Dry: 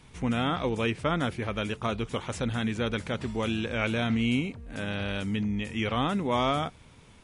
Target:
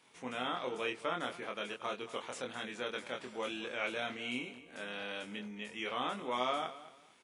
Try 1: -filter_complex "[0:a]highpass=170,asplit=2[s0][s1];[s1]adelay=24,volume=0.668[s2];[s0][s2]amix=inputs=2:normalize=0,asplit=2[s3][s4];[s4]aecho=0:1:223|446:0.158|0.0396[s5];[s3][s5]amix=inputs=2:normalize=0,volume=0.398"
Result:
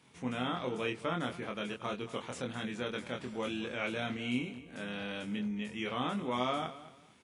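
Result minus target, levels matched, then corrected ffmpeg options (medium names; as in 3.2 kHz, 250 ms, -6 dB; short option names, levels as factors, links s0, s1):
125 Hz band +10.5 dB
-filter_complex "[0:a]highpass=400,asplit=2[s0][s1];[s1]adelay=24,volume=0.668[s2];[s0][s2]amix=inputs=2:normalize=0,asplit=2[s3][s4];[s4]aecho=0:1:223|446:0.158|0.0396[s5];[s3][s5]amix=inputs=2:normalize=0,volume=0.398"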